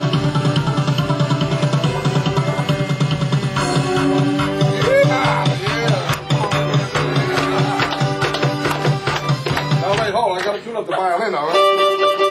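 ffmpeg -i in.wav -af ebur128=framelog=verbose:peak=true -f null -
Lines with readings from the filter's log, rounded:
Integrated loudness:
  I:         -17.4 LUFS
  Threshold: -27.4 LUFS
Loudness range:
  LRA:         1.8 LU
  Threshold: -37.6 LUFS
  LRA low:   -18.5 LUFS
  LRA high:  -16.7 LUFS
True peak:
  Peak:       -3.3 dBFS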